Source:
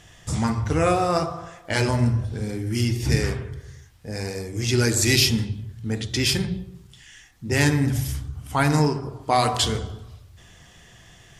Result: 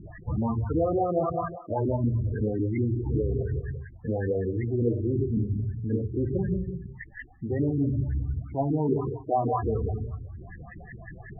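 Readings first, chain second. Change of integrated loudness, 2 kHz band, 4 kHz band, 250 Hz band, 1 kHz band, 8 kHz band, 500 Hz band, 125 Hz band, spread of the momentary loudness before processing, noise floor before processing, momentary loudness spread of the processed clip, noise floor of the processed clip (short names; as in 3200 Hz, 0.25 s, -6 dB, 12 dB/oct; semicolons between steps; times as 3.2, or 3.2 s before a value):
-5.0 dB, -17.5 dB, under -40 dB, -2.5 dB, -6.0 dB, under -40 dB, -1.5 dB, -3.5 dB, 14 LU, -51 dBFS, 14 LU, -47 dBFS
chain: treble ducked by the level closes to 590 Hz, closed at -17 dBFS; dynamic EQ 170 Hz, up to -5 dB, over -35 dBFS, Q 1.1; reverse; compressor 4:1, threshold -33 dBFS, peak gain reduction 13.5 dB; reverse; LFO low-pass saw up 5.4 Hz 240–2400 Hz; in parallel at -4.5 dB: soft clip -30.5 dBFS, distortion -13 dB; on the sum: loudest bins only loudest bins 16; gain +4 dB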